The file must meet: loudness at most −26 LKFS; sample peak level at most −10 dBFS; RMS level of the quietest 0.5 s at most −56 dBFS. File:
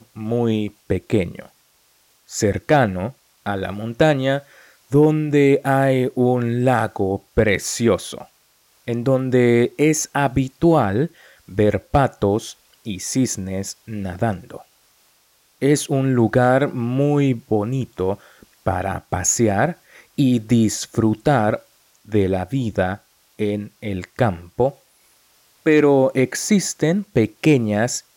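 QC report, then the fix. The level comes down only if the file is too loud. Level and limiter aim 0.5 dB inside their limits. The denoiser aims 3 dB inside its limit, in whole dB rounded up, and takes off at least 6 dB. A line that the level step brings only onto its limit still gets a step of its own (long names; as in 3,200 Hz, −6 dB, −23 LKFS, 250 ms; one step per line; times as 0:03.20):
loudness −19.5 LKFS: out of spec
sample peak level −5.5 dBFS: out of spec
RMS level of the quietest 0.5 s −59 dBFS: in spec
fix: level −7 dB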